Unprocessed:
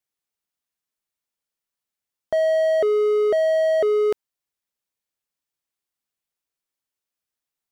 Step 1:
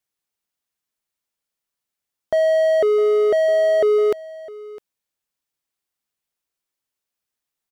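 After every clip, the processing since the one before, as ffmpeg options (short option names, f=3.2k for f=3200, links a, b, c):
-af "aecho=1:1:657:0.112,volume=2.5dB"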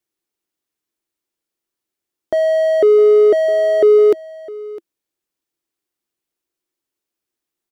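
-af "equalizer=f=340:w=2.4:g=14"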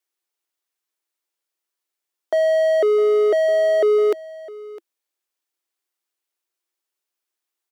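-af "highpass=580"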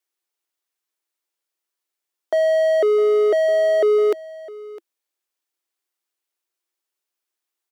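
-af anull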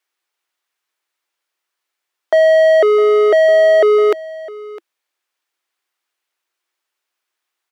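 -af "equalizer=f=1.6k:w=0.33:g=11"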